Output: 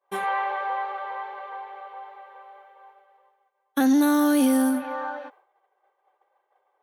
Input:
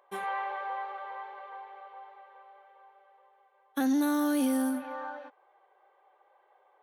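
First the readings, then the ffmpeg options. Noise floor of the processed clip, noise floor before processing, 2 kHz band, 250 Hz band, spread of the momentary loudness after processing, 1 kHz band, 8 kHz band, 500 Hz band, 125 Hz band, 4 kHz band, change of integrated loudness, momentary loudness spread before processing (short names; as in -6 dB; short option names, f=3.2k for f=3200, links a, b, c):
-74 dBFS, -67 dBFS, +7.5 dB, +7.5 dB, 20 LU, +7.5 dB, +7.5 dB, +7.5 dB, n/a, +7.5 dB, +7.5 dB, 20 LU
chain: -af "agate=range=-33dB:threshold=-55dB:ratio=3:detection=peak,volume=7.5dB"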